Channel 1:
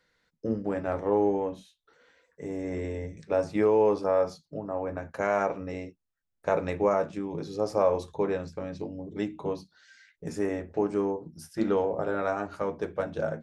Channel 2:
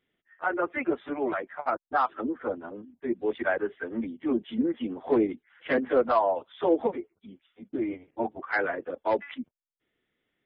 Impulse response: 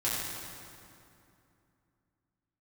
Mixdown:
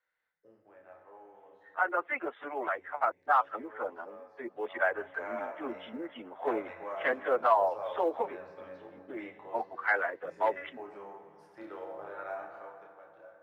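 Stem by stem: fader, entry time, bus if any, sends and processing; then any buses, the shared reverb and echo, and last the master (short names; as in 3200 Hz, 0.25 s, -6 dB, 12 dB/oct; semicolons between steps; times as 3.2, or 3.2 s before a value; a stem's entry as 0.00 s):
4.41 s -21 dB -> 5.04 s -9.5 dB -> 12.4 s -9.5 dB -> 12.91 s -21.5 dB, 0.00 s, send -9 dB, chorus voices 2, 0.29 Hz, delay 28 ms, depth 4.8 ms; three-band squash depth 40%
+1.0 dB, 1.35 s, no send, notch 2400 Hz, Q 22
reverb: on, RT60 2.7 s, pre-delay 4 ms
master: three-band isolator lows -20 dB, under 550 Hz, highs -19 dB, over 3100 Hz; short-mantissa float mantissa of 6-bit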